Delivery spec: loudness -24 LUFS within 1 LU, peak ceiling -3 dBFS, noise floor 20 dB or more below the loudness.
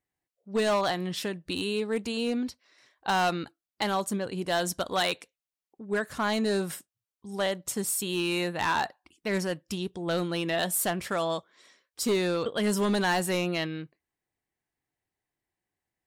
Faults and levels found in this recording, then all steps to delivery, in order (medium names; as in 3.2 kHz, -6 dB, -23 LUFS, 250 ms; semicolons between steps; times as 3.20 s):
clipped samples 1.0%; clipping level -20.5 dBFS; loudness -29.0 LUFS; peak level -20.5 dBFS; loudness target -24.0 LUFS
-> clip repair -20.5 dBFS; trim +5 dB